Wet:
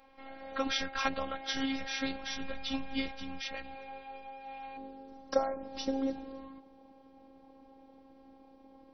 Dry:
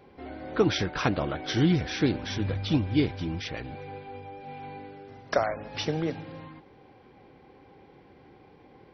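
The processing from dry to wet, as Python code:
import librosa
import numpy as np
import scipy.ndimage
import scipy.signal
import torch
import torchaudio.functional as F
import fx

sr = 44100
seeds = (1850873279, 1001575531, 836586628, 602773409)

y = fx.peak_eq(x, sr, hz=fx.steps((0.0, 270.0), (4.77, 2100.0)), db=-12.5, octaves=1.4)
y = fx.robotise(y, sr, hz=269.0)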